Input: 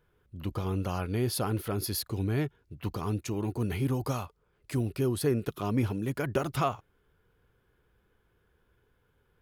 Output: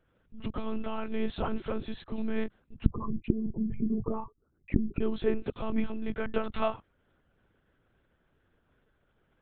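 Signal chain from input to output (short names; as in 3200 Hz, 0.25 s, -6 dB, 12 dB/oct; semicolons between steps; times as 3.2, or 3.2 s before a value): 2.85–5.01 formant sharpening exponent 3; HPF 46 Hz 12 dB/oct; monotone LPC vocoder at 8 kHz 220 Hz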